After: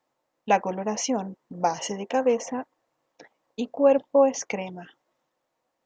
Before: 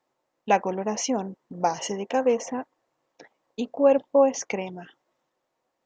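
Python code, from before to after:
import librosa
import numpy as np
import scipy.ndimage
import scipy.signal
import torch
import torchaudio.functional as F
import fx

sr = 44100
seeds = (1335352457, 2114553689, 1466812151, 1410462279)

y = fx.notch(x, sr, hz=380.0, q=12.0)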